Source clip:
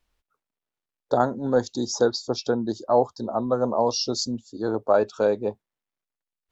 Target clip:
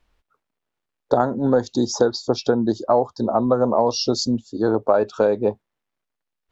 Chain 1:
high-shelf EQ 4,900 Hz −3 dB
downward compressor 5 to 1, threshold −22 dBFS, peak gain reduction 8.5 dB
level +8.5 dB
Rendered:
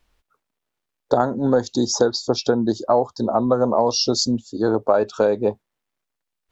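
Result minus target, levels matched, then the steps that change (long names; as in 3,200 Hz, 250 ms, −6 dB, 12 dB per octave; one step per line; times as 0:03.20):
8,000 Hz band +4.5 dB
change: high-shelf EQ 4,900 Hz −11 dB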